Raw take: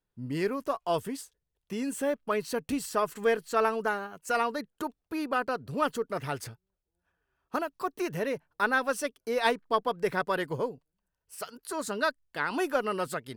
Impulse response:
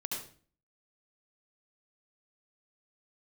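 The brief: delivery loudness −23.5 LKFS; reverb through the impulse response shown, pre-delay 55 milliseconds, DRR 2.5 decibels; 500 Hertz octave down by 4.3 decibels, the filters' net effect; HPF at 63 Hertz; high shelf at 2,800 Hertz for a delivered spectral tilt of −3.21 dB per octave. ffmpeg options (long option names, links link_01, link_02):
-filter_complex "[0:a]highpass=63,equalizer=frequency=500:width_type=o:gain=-5.5,highshelf=frequency=2800:gain=5.5,asplit=2[link_01][link_02];[1:a]atrim=start_sample=2205,adelay=55[link_03];[link_02][link_03]afir=irnorm=-1:irlink=0,volume=-4.5dB[link_04];[link_01][link_04]amix=inputs=2:normalize=0,volume=6.5dB"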